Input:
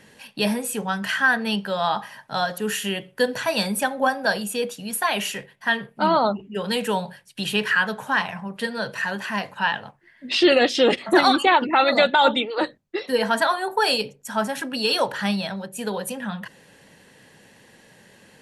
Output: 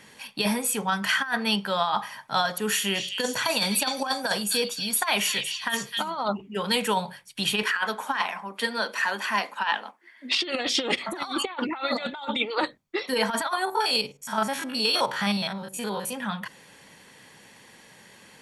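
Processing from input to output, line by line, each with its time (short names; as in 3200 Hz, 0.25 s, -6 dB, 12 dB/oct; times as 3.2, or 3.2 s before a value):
2.47–6.28 delay with a stepping band-pass 0.255 s, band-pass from 3800 Hz, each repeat 0.7 oct, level -2 dB
7.63–10.42 steep high-pass 220 Hz 48 dB/oct
13.65–16.13 stepped spectrum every 50 ms
whole clip: low shelf 320 Hz -9 dB; comb 0.9 ms, depth 31%; negative-ratio compressor -24 dBFS, ratio -0.5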